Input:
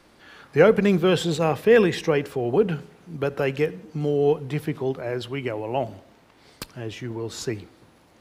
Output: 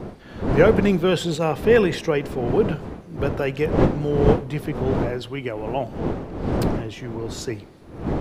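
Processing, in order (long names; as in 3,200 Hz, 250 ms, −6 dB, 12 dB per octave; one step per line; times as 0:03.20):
wind on the microphone 370 Hz −26 dBFS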